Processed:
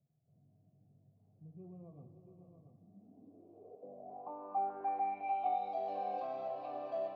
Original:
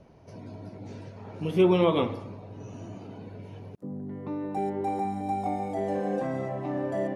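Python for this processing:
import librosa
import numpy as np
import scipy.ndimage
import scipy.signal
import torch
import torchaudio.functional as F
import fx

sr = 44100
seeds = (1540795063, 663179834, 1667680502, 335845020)

y = fx.vowel_filter(x, sr, vowel='a')
y = fx.high_shelf(y, sr, hz=2800.0, db=7.5)
y = fx.echo_multitap(y, sr, ms=(308, 433, 568, 681), db=(-19.0, -12.5, -12.5, -8.5))
y = fx.filter_sweep_lowpass(y, sr, from_hz=140.0, to_hz=4400.0, start_s=2.65, end_s=5.76, q=6.0)
y = y * librosa.db_to_amplitude(-2.0)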